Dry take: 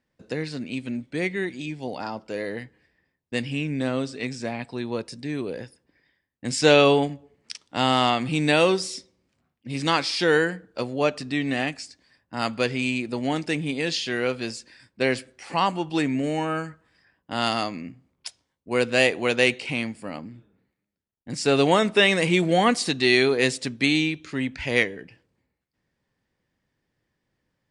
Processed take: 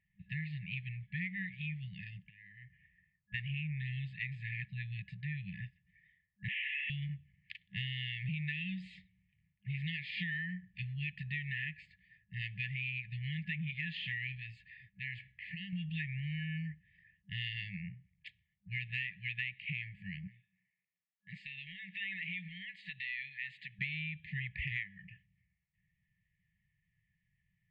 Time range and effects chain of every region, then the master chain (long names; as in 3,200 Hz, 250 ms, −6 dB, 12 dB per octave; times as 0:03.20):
0:02.23–0:03.34: Butterworth low-pass 3,600 Hz + downward compressor 4 to 1, threshold −47 dBFS
0:06.48–0:06.90: linear delta modulator 16 kbit/s, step −19.5 dBFS + high-pass filter 1,100 Hz 24 dB per octave + transient designer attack −2 dB, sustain +12 dB
0:14.37–0:15.73: parametric band 170 Hz −5 dB 0.26 octaves + downward compressor 2 to 1, threshold −36 dBFS
0:20.27–0:23.79: meter weighting curve A + downward compressor 4 to 1, threshold −34 dBFS
whole clip: inverse Chebyshev low-pass filter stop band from 5,200 Hz, stop band 40 dB; brick-wall band-stop 200–1,700 Hz; downward compressor 10 to 1, threshold −35 dBFS